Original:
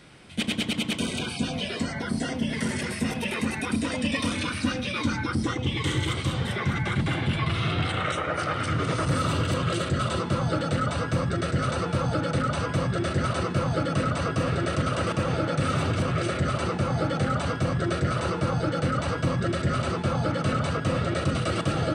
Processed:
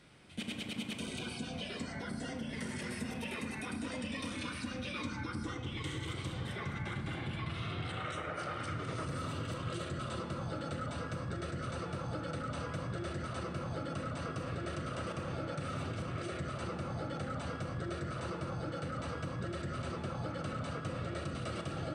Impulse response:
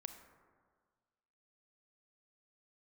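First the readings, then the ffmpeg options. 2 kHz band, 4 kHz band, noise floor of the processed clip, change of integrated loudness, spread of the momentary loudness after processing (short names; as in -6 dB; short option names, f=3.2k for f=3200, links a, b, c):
-12.5 dB, -12.5 dB, -43 dBFS, -13.0 dB, 1 LU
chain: -filter_complex "[0:a]acompressor=threshold=-26dB:ratio=6[a];[1:a]atrim=start_sample=2205,asetrate=48510,aresample=44100[b];[a][b]afir=irnorm=-1:irlink=0,volume=-4dB"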